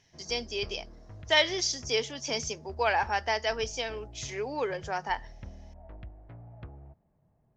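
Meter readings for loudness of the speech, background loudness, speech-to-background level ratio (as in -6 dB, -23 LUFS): -30.0 LUFS, -48.5 LUFS, 18.5 dB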